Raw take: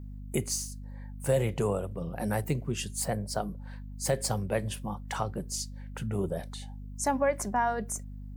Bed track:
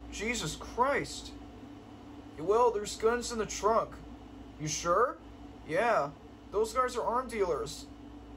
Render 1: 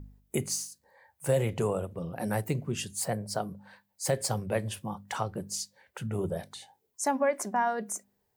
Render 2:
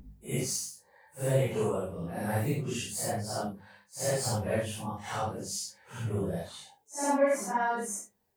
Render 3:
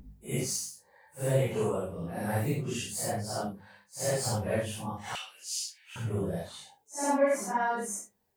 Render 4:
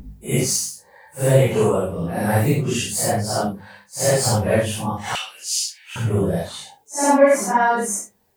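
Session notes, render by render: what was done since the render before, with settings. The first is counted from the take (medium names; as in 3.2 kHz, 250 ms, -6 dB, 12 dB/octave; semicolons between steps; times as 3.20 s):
de-hum 50 Hz, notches 5
phase randomisation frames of 200 ms
5.15–5.96 s: resonant high-pass 2.7 kHz, resonance Q 4.2
trim +12 dB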